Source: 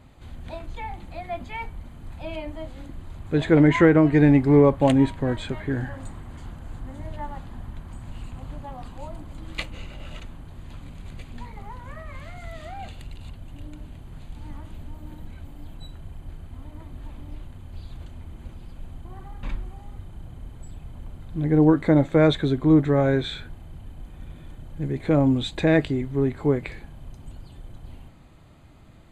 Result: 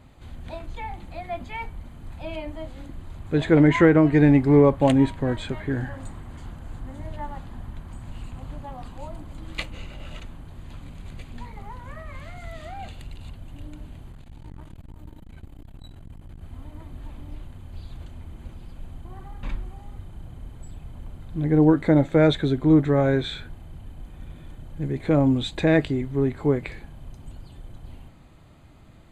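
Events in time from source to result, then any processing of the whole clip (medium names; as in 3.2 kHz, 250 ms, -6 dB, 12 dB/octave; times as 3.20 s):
14.12–16.42 s: transformer saturation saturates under 150 Hz
21.65–22.73 s: band-stop 1.1 kHz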